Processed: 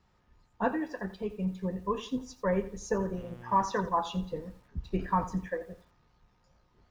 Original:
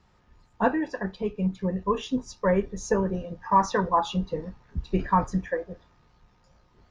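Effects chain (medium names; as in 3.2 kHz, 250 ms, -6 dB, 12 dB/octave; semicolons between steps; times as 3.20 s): 3.16–3.63 s: mains buzz 120 Hz, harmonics 29, -42 dBFS -7 dB/octave; bit-crushed delay 86 ms, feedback 35%, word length 8-bit, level -14.5 dB; trim -6 dB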